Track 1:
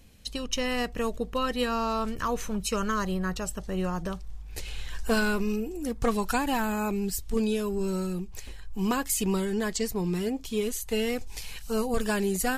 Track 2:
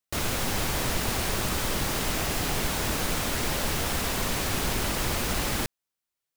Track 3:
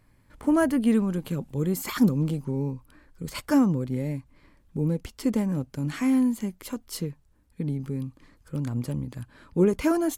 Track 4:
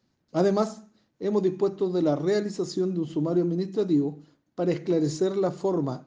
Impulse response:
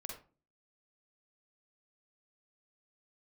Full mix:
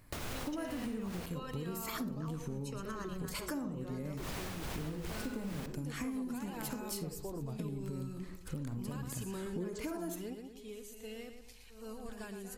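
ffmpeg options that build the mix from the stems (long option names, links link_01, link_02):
-filter_complex "[0:a]volume=-9dB,asplit=3[link_01][link_02][link_03];[link_02]volume=-20dB[link_04];[link_03]volume=-10dB[link_05];[1:a]highshelf=frequency=4900:gain=-12,tremolo=f=2.5:d=0.77,volume=2dB,asplit=3[link_06][link_07][link_08];[link_06]atrim=end=1.26,asetpts=PTS-STARTPTS,afade=type=out:start_time=1.256:duration=0.004:curve=hsin[link_09];[link_07]atrim=start=1.26:end=4.17,asetpts=PTS-STARTPTS,volume=0[link_10];[link_08]atrim=start=4.17,asetpts=PTS-STARTPTS,afade=type=in:duration=0.004:curve=hsin[link_11];[link_09][link_10][link_11]concat=n=3:v=0:a=1,asplit=2[link_12][link_13];[link_13]volume=-13.5dB[link_14];[2:a]volume=-1.5dB,asplit=3[link_15][link_16][link_17];[link_16]volume=-3dB[link_18];[3:a]lowshelf=frequency=150:width_type=q:width=1.5:gain=12.5,adelay=1600,volume=-13.5dB[link_19];[link_17]apad=whole_len=554719[link_20];[link_01][link_20]sidechaingate=range=-33dB:threshold=-56dB:ratio=16:detection=peak[link_21];[link_12][link_15]amix=inputs=2:normalize=0,highshelf=frequency=6600:gain=9.5,acompressor=threshold=-33dB:ratio=6,volume=0dB[link_22];[link_21][link_19]amix=inputs=2:normalize=0,alimiter=level_in=6dB:limit=-24dB:level=0:latency=1,volume=-6dB,volume=0dB[link_23];[4:a]atrim=start_sample=2205[link_24];[link_04][link_14][link_18]amix=inputs=3:normalize=0[link_25];[link_25][link_24]afir=irnorm=-1:irlink=0[link_26];[link_05]aecho=0:1:117|234|351|468|585|702:1|0.4|0.16|0.064|0.0256|0.0102[link_27];[link_22][link_23][link_26][link_27]amix=inputs=4:normalize=0,acompressor=threshold=-37dB:ratio=6"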